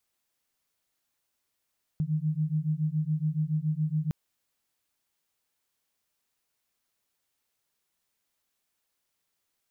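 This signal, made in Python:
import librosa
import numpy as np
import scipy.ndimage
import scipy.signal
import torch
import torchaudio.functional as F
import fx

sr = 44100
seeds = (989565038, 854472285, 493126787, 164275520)

y = fx.two_tone_beats(sr, length_s=2.11, hz=151.0, beat_hz=7.1, level_db=-28.5)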